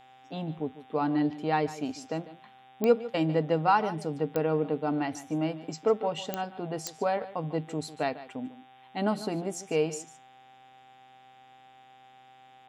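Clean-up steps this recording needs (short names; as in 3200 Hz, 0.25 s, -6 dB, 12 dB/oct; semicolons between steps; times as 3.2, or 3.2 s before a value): de-click; de-hum 128.7 Hz, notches 29; notch 780 Hz, Q 30; inverse comb 0.148 s -15.5 dB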